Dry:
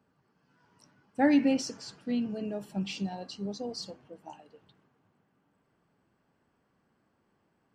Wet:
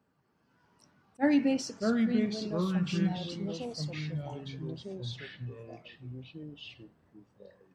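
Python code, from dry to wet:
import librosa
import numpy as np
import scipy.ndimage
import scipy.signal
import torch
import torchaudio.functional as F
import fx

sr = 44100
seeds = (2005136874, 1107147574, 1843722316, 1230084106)

y = fx.echo_pitch(x, sr, ms=315, semitones=-4, count=2, db_per_echo=-3.0)
y = fx.attack_slew(y, sr, db_per_s=580.0)
y = y * librosa.db_to_amplitude(-2.0)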